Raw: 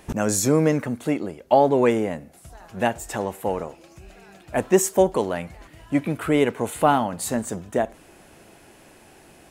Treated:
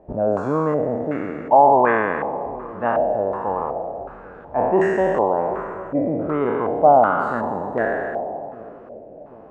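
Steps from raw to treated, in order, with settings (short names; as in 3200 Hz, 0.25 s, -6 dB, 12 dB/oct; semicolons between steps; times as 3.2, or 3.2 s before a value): spectral trails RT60 2.00 s; split-band echo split 570 Hz, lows 0.778 s, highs 0.273 s, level -15.5 dB; stepped low-pass 2.7 Hz 620–1600 Hz; gain -5.5 dB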